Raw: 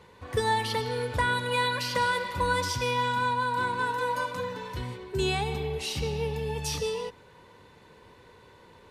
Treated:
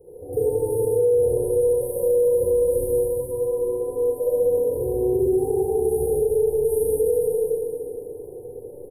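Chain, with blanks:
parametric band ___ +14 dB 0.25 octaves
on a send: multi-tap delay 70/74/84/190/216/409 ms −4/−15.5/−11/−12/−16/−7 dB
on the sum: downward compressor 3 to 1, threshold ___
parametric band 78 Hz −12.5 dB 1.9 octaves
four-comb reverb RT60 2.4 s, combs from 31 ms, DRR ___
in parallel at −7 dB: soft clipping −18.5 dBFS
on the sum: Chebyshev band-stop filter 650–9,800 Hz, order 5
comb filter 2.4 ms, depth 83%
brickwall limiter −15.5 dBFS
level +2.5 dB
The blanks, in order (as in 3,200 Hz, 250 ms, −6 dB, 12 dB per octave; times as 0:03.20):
3,100 Hz, −28 dBFS, −8.5 dB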